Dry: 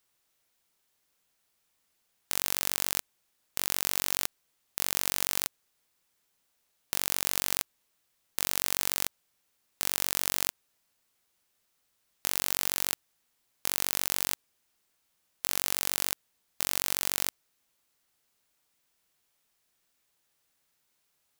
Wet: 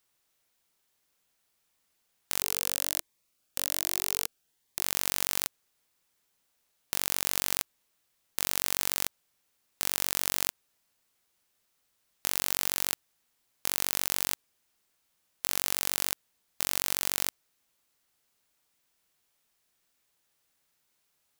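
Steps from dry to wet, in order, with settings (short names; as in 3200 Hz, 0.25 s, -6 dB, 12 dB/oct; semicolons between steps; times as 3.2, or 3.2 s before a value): 2.41–4.82 cascading phaser rising 1.2 Hz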